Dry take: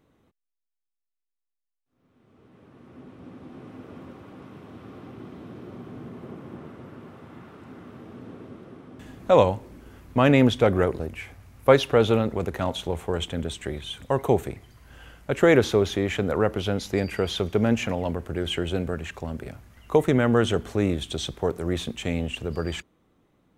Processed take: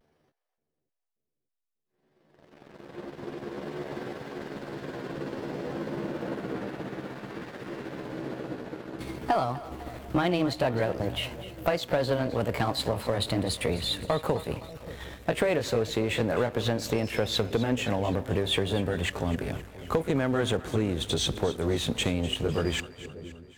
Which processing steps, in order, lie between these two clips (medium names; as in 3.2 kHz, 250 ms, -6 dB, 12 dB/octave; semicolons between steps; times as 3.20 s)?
pitch bend over the whole clip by +7 st ending unshifted; compression 12:1, threshold -29 dBFS, peak gain reduction 17.5 dB; waveshaping leveller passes 2; on a send: two-band feedback delay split 570 Hz, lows 583 ms, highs 255 ms, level -15 dB; on the sum: vibrato 0.55 Hz 38 cents